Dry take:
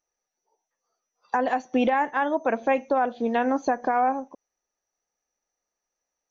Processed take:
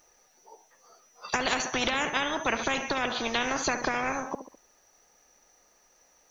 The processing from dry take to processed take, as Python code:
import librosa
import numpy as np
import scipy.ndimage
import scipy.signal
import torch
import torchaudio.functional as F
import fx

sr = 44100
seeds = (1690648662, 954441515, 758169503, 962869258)

p1 = x + fx.echo_feedback(x, sr, ms=68, feedback_pct=46, wet_db=-20, dry=0)
y = fx.spectral_comp(p1, sr, ratio=4.0)